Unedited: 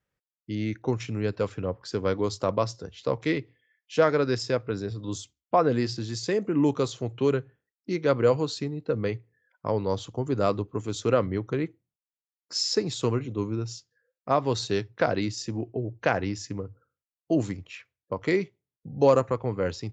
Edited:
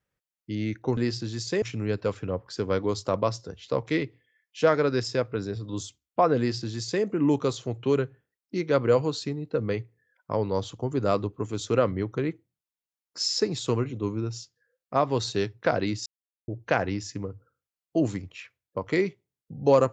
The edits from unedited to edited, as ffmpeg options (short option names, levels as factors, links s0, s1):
-filter_complex "[0:a]asplit=5[s0][s1][s2][s3][s4];[s0]atrim=end=0.972[s5];[s1]atrim=start=5.728:end=6.382[s6];[s2]atrim=start=0.968:end=15.41,asetpts=PTS-STARTPTS,afade=t=out:st=14.438:d=0.004:c=hsin[s7];[s3]atrim=start=15.41:end=15.83,asetpts=PTS-STARTPTS,volume=0[s8];[s4]atrim=start=15.83,asetpts=PTS-STARTPTS,afade=t=in:d=0.004:c=hsin[s9];[s5][s6]acrossfade=d=0.004:c1=hsin:c2=hsin[s10];[s7][s8][s9]concat=n=3:v=0:a=1[s11];[s10][s11]acrossfade=d=0.004:c1=hsin:c2=hsin"